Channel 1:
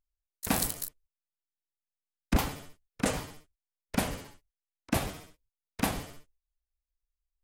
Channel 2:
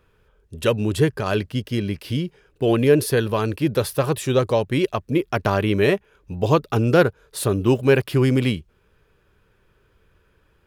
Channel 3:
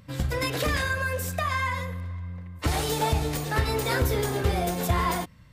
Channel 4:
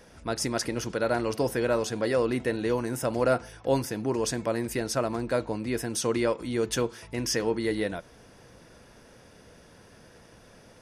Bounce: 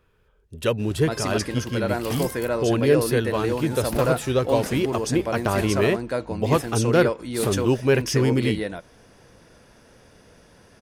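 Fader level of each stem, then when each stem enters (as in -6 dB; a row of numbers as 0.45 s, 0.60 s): -6.0 dB, -3.0 dB, -15.5 dB, +0.5 dB; 1.60 s, 0.00 s, 0.70 s, 0.80 s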